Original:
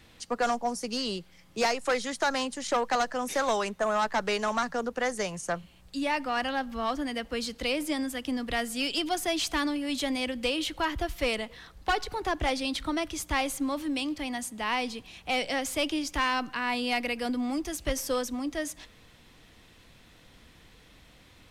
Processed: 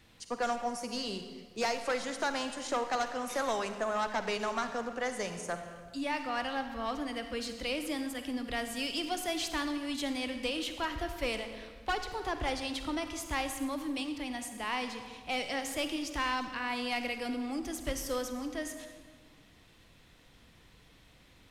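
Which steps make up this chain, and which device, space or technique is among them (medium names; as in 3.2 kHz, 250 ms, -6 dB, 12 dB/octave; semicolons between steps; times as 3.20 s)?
saturated reverb return (on a send at -5 dB: reverberation RT60 1.5 s, pre-delay 39 ms + saturation -27 dBFS, distortion -13 dB); on the sum: trim -5.5 dB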